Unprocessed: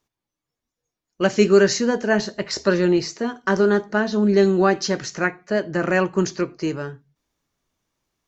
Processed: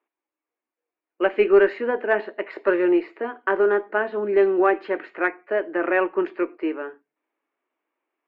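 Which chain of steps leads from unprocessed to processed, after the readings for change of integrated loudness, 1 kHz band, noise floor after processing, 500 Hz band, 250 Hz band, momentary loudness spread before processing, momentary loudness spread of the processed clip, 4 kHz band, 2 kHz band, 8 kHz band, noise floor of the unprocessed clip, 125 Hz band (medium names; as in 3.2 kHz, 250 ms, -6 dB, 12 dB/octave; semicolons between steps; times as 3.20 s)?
-2.0 dB, 0.0 dB, under -85 dBFS, -0.5 dB, -5.0 dB, 10 LU, 11 LU, under -10 dB, -1.0 dB, no reading, under -85 dBFS, under -20 dB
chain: elliptic band-pass 310–2500 Hz, stop band 40 dB; Chebyshev shaper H 2 -22 dB, 4 -39 dB, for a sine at -5 dBFS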